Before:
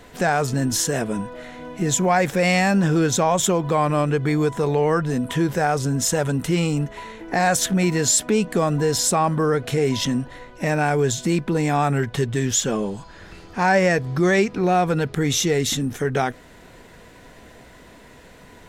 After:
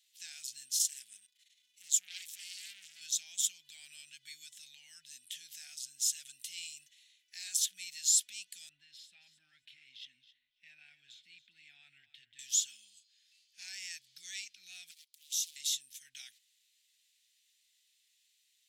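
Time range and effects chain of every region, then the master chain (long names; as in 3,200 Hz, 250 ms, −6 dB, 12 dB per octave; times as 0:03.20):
0:00.78–0:03.01: high-shelf EQ 5,800 Hz +5 dB + saturating transformer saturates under 2,000 Hz
0:08.69–0:12.39: high-frequency loss of the air 460 metres + repeating echo 273 ms, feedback 17%, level −14 dB
0:14.91–0:15.56: first difference + highs frequency-modulated by the lows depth 0.74 ms
whole clip: noise gate −32 dBFS, range −7 dB; inverse Chebyshev high-pass filter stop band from 1,200 Hz, stop band 50 dB; level −8 dB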